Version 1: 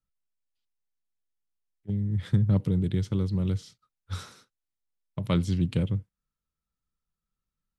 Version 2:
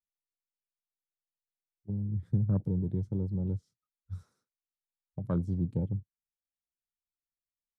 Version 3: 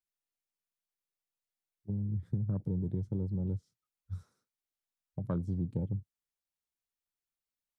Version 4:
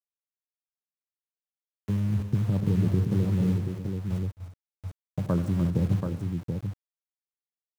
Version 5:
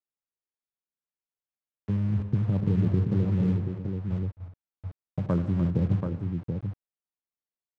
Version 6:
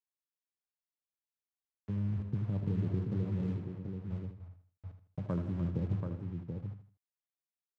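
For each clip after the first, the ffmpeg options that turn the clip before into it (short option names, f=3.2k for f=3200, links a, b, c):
-af "afwtdn=0.0158,equalizer=f=3k:t=o:w=1.3:g=-12.5,volume=-5dB"
-af "acompressor=threshold=-29dB:ratio=6"
-af "aeval=exprs='val(0)*gte(abs(val(0)),0.00562)':c=same,aecho=1:1:82|137|264|298|355|732:0.211|0.106|0.112|0.316|0.168|0.531,volume=8dB"
-af "adynamicsmooth=sensitivity=4.5:basefreq=2k"
-af "aecho=1:1:79|158|237:0.316|0.098|0.0304,volume=-9dB"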